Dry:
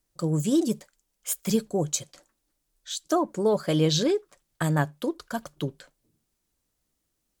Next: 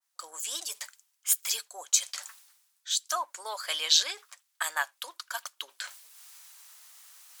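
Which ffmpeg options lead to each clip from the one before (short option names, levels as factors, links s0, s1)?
-af "areverse,acompressor=mode=upward:threshold=0.0316:ratio=2.5,areverse,highpass=f=930:w=0.5412,highpass=f=930:w=1.3066,adynamicequalizer=threshold=0.00447:dfrequency=1700:dqfactor=0.7:tfrequency=1700:tqfactor=0.7:attack=5:release=100:ratio=0.375:range=3:mode=boostabove:tftype=highshelf"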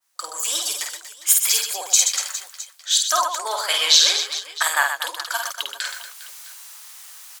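-filter_complex "[0:a]asplit=2[s0][s1];[s1]aecho=0:1:50|125|237.5|406.2|659.4:0.631|0.398|0.251|0.158|0.1[s2];[s0][s2]amix=inputs=2:normalize=0,alimiter=level_in=3.35:limit=0.891:release=50:level=0:latency=1,volume=0.891"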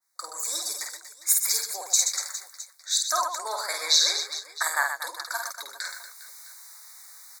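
-af "asuperstop=centerf=2900:order=12:qfactor=2.2,volume=0.531"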